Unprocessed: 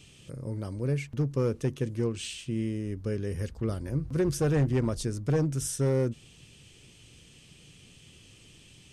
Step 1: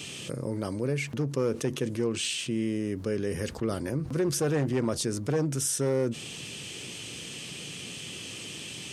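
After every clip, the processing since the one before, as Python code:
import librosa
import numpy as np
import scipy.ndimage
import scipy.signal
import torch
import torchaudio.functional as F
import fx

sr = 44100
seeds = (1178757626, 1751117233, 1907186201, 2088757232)

y = scipy.signal.sosfilt(scipy.signal.bessel(2, 220.0, 'highpass', norm='mag', fs=sr, output='sos'), x)
y = fx.env_flatten(y, sr, amount_pct=50)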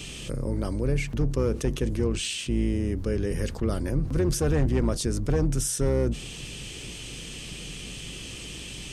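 y = fx.octave_divider(x, sr, octaves=2, level_db=-2.0)
y = fx.low_shelf(y, sr, hz=140.0, db=6.5)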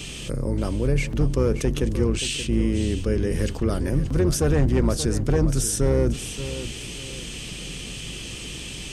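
y = fx.echo_feedback(x, sr, ms=578, feedback_pct=30, wet_db=-12)
y = F.gain(torch.from_numpy(y), 3.5).numpy()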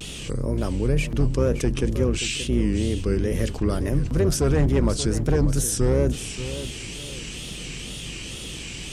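y = fx.wow_flutter(x, sr, seeds[0], rate_hz=2.1, depth_cents=140.0)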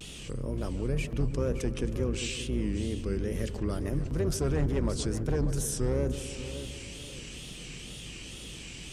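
y = fx.echo_wet_lowpass(x, sr, ms=148, feedback_pct=70, hz=1600.0, wet_db=-12.5)
y = F.gain(torch.from_numpy(y), -8.5).numpy()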